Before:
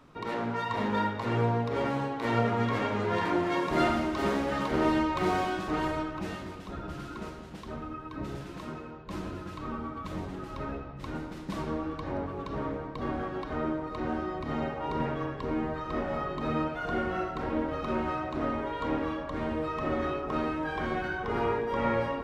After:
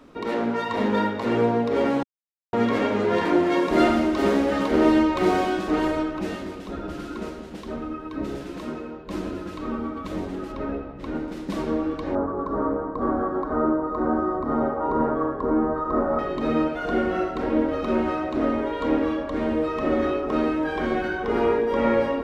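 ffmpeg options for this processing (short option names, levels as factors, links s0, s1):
-filter_complex "[0:a]asettb=1/sr,asplit=3[s0][s1][s2];[s0]atrim=end=10.524[s3];[s1]atrim=start=10.52:end=11.28,asetpts=PTS-STARTPTS,afade=t=in:d=0.004:c=qsin,afade=t=out:st=0.756:d=0.004:c=qsin,highshelf=f=4400:g=-10[s4];[s2]atrim=start=11.276[s5];[s3][s4]acrossfade=d=0.004:c1=hsin:c2=qsin[s6];[s6][s5]acrossfade=d=0.004:c1=qsin:c2=hsin,asettb=1/sr,asplit=3[s7][s8][s9];[s7]atrim=end=12.154[s10];[s8]atrim=start=12.15:end=16.19,asetpts=PTS-STARTPTS,afade=t=in:d=0.004:c=qsin,afade=t=out:st=4.036:d=0.004:c=qsin,highshelf=f=1800:t=q:w=3:g=-13[s11];[s9]atrim=start=16.186[s12];[s10][s11]acrossfade=d=0.004:c1=hsin:c2=qsin[s13];[s13][s12]acrossfade=d=0.004:c1=qsin:c2=hsin,asplit=3[s14][s15][s16];[s14]atrim=end=2.03,asetpts=PTS-STARTPTS,afade=t=out:st=2.026:d=0.004:c=hsin[s17];[s15]atrim=start=2.03:end=2.53,asetpts=PTS-STARTPTS,volume=0[s18];[s16]atrim=start=2.53,asetpts=PTS-STARTPTS,afade=t=in:d=0.004:c=hsin[s19];[s17][s18][s19]concat=n=3:v=0:a=1,equalizer=f=125:t=o:w=1:g=-10,equalizer=f=250:t=o:w=1:g=6,equalizer=f=500:t=o:w=1:g=4,equalizer=f=1000:t=o:w=1:g=-3,volume=1.78"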